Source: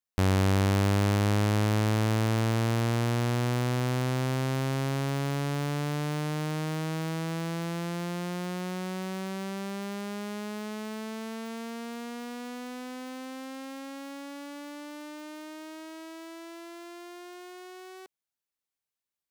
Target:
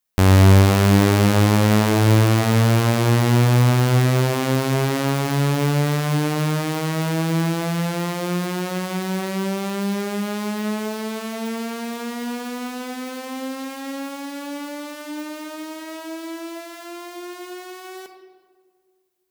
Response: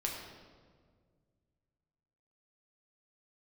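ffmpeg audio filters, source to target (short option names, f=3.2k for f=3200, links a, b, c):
-filter_complex "[0:a]asplit=2[a][b];[1:a]atrim=start_sample=2205,highshelf=f=9.5k:g=11.5[c];[b][c]afir=irnorm=-1:irlink=0,volume=-2.5dB[d];[a][d]amix=inputs=2:normalize=0,volume=4.5dB"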